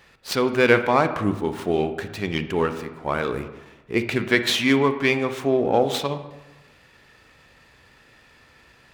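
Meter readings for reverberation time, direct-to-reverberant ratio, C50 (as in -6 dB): 1.1 s, 9.0 dB, 10.5 dB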